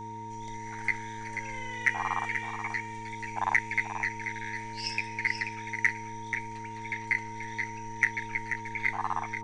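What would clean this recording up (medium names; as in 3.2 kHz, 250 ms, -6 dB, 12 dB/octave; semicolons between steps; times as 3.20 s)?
de-hum 109.9 Hz, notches 4; band-stop 930 Hz, Q 30; expander -32 dBFS, range -21 dB; inverse comb 484 ms -8 dB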